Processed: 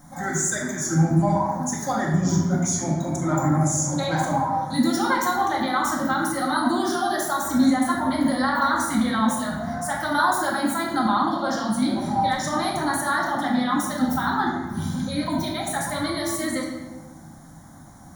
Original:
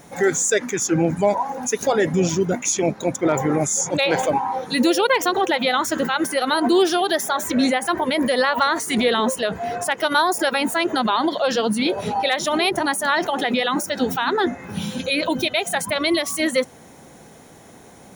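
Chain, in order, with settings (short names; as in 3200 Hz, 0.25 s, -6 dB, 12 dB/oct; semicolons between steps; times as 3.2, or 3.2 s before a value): low shelf 340 Hz +5.5 dB; fixed phaser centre 1100 Hz, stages 4; shoebox room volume 690 m³, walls mixed, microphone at 2.1 m; gain -5 dB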